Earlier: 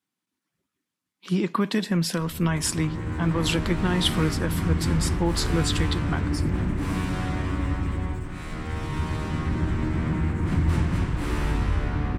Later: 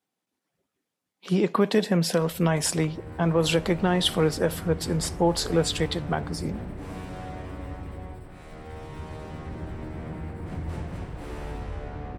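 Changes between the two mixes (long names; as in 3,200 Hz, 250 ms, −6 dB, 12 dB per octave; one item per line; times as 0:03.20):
first sound −11.0 dB
second sound: add phaser with its sweep stopped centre 1,400 Hz, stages 8
master: add flat-topped bell 580 Hz +9 dB 1.2 octaves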